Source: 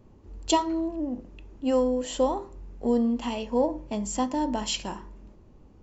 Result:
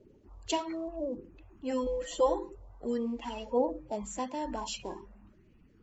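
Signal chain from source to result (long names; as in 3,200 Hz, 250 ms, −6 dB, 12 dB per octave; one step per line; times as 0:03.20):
spectral magnitudes quantised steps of 30 dB
0:01.86–0:02.55: comb filter 5.9 ms, depth 97%
auto-filter bell 0.81 Hz 390–2,500 Hz +10 dB
level −8.5 dB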